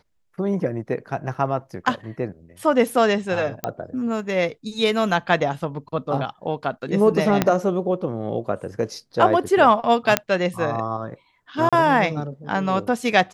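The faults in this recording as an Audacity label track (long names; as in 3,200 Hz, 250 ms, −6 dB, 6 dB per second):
1.340000	1.340000	drop-out 4.9 ms
3.640000	3.640000	click −9 dBFS
7.420000	7.420000	click −3 dBFS
10.170000	10.170000	click −1 dBFS
11.690000	11.730000	drop-out 36 ms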